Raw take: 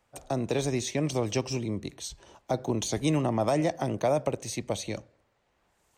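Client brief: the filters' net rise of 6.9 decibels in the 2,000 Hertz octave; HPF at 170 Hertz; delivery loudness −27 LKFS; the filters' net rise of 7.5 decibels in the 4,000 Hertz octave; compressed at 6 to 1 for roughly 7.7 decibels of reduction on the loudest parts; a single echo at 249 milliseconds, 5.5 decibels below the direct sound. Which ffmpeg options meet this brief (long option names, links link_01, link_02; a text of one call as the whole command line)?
ffmpeg -i in.wav -af "highpass=170,equalizer=frequency=2000:width_type=o:gain=6,equalizer=frequency=4000:width_type=o:gain=7.5,acompressor=threshold=-29dB:ratio=6,aecho=1:1:249:0.531,volume=6dB" out.wav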